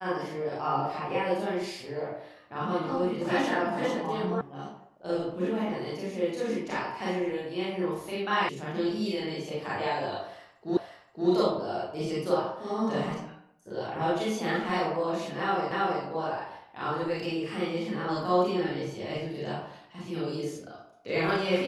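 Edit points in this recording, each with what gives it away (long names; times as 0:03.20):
0:04.41: cut off before it has died away
0:08.49: cut off before it has died away
0:10.77: the same again, the last 0.52 s
0:15.71: the same again, the last 0.32 s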